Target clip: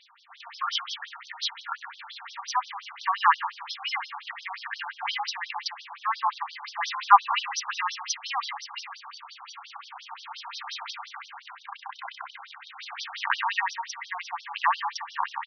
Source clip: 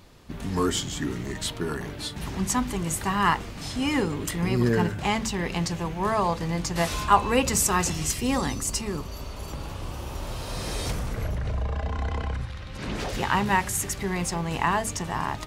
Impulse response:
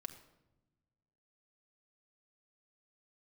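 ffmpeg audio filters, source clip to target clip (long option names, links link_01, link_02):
-filter_complex "[0:a]asplit=2[link_01][link_02];[link_02]adelay=107,lowpass=frequency=1300:poles=1,volume=-6dB,asplit=2[link_03][link_04];[link_04]adelay=107,lowpass=frequency=1300:poles=1,volume=0.51,asplit=2[link_05][link_06];[link_06]adelay=107,lowpass=frequency=1300:poles=1,volume=0.51,asplit=2[link_07][link_08];[link_08]adelay=107,lowpass=frequency=1300:poles=1,volume=0.51,asplit=2[link_09][link_10];[link_10]adelay=107,lowpass=frequency=1300:poles=1,volume=0.51,asplit=2[link_11][link_12];[link_12]adelay=107,lowpass=frequency=1300:poles=1,volume=0.51[link_13];[link_01][link_03][link_05][link_07][link_09][link_11][link_13]amix=inputs=7:normalize=0,asplit=2[link_14][link_15];[1:a]atrim=start_sample=2205[link_16];[link_15][link_16]afir=irnorm=-1:irlink=0,volume=4dB[link_17];[link_14][link_17]amix=inputs=2:normalize=0,afftfilt=real='re*between(b*sr/1024,970*pow(4500/970,0.5+0.5*sin(2*PI*5.7*pts/sr))/1.41,970*pow(4500/970,0.5+0.5*sin(2*PI*5.7*pts/sr))*1.41)':imag='im*between(b*sr/1024,970*pow(4500/970,0.5+0.5*sin(2*PI*5.7*pts/sr))/1.41,970*pow(4500/970,0.5+0.5*sin(2*PI*5.7*pts/sr))*1.41)':win_size=1024:overlap=0.75,volume=-1dB"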